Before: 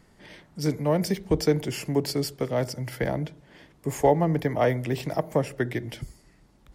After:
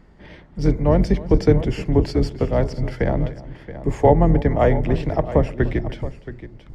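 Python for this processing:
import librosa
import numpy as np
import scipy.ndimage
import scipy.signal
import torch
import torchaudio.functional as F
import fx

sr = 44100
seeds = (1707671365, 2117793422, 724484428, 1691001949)

y = fx.octave_divider(x, sr, octaves=2, level_db=1.0)
y = fx.spacing_loss(y, sr, db_at_10k=22)
y = fx.echo_multitap(y, sr, ms=(297, 675), db=(-19.5, -14.0))
y = y * librosa.db_to_amplitude(6.5)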